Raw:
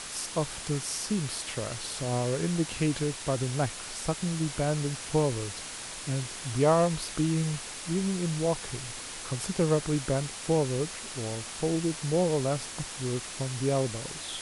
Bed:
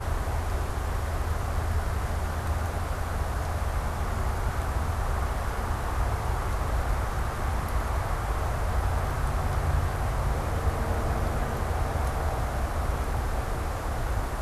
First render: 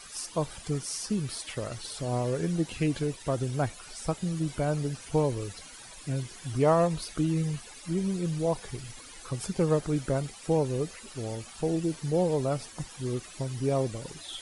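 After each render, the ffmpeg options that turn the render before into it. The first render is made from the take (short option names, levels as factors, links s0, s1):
-af "afftdn=nr=14:nf=-40"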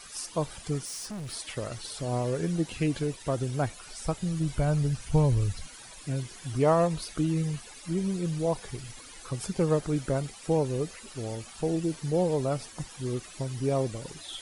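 -filter_complex "[0:a]asettb=1/sr,asplit=3[s0][s1][s2];[s0]atrim=end=0.854[s3];[s1]atrim=start=0.85:end=1.33,asetpts=PTS-STARTPTS,afade=t=in:d=0.004:c=qsin,afade=t=out:st=0.476:d=0.004:c=qsin,asoftclip=type=hard:threshold=0.0178[s4];[s2]atrim=start=1.326[s5];[s3][s4]acrossfade=d=0.004:c1=hsin:c2=qsin[s6];[s6][s5]acrossfade=d=0.004:c1=qsin:c2=hsin,asettb=1/sr,asplit=3[s7][s8][s9];[s7]atrim=end=3.874[s10];[s8]atrim=start=3.87:end=5.68,asetpts=PTS-STARTPTS,afade=t=in:d=0.004:c=qsin,afade=t=out:st=1.806:d=0.004:c=qsin,asubboost=boost=11.5:cutoff=140[s11];[s9]atrim=start=5.676[s12];[s10][s11]acrossfade=d=0.004:c1=hsin:c2=qsin[s13];[s13][s12]acrossfade=d=0.004:c1=qsin:c2=hsin"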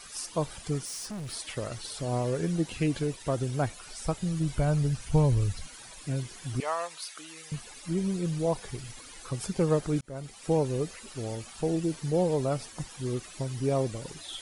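-filter_complex "[0:a]asettb=1/sr,asplit=3[s0][s1][s2];[s0]atrim=end=6.604[s3];[s1]atrim=start=6.6:end=7.52,asetpts=PTS-STARTPTS,afade=t=in:d=0.004:c=qsin,afade=t=out:st=0.916:d=0.004:c=qsin,highpass=1100[s4];[s2]atrim=start=7.516[s5];[s3][s4]acrossfade=d=0.004:c1=hsin:c2=qsin[s6];[s6][s5]acrossfade=d=0.004:c1=qsin:c2=hsin,asplit=2[s7][s8];[s7]atrim=end=10.01,asetpts=PTS-STARTPTS,afade=t=out:st=10.006:d=0.004:c=hsin[s9];[s8]atrim=start=10.01,asetpts=PTS-STARTPTS,afade=t=in:d=0.48[s10];[s9][s10]concat=n=2:v=0:a=1"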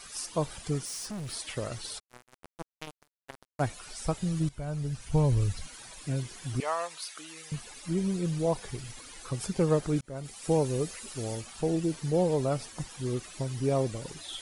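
-filter_complex "[0:a]asplit=3[s0][s1][s2];[s0]afade=t=out:st=1.98:d=0.02[s3];[s1]acrusher=bits=2:mix=0:aa=0.5,afade=t=in:st=1.98:d=0.02,afade=t=out:st=3.59:d=0.02[s4];[s2]afade=t=in:st=3.59:d=0.02[s5];[s3][s4][s5]amix=inputs=3:normalize=0,asettb=1/sr,asplit=3[s6][s7][s8];[s6]atrim=end=10.254[s9];[s7]atrim=start=10.25:end=11.41,asetpts=PTS-STARTPTS,afade=t=in:d=0.004:c=qsin,afade=t=out:st=1.156:d=0.004:c=qsin,highshelf=f=6300:g=7.5[s10];[s8]atrim=start=11.406[s11];[s9][s10]acrossfade=d=0.004:c1=hsin:c2=qsin[s12];[s12][s11]acrossfade=d=0.004:c1=qsin:c2=hsin,asplit=2[s13][s14];[s13]atrim=end=4.49,asetpts=PTS-STARTPTS,afade=t=out:st=4.486:d=0.004:c=hsin:silence=0.177828[s15];[s14]atrim=start=4.49,asetpts=PTS-STARTPTS,afade=t=in:d=0.92:silence=0.177828[s16];[s15][s16]concat=n=2:v=0:a=1"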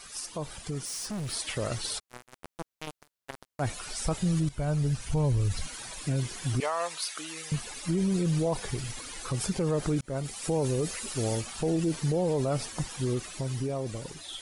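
-af "alimiter=level_in=1.26:limit=0.0631:level=0:latency=1:release=39,volume=0.794,dynaudnorm=f=230:g=11:m=2"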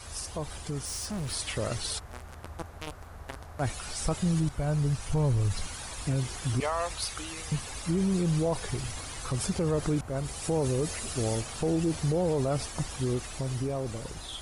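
-filter_complex "[1:a]volume=0.158[s0];[0:a][s0]amix=inputs=2:normalize=0"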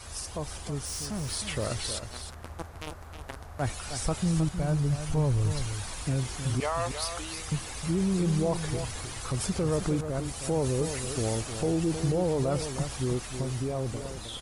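-af "aecho=1:1:313:0.355"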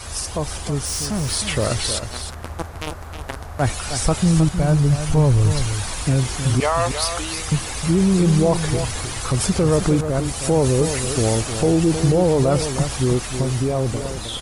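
-af "volume=3.35"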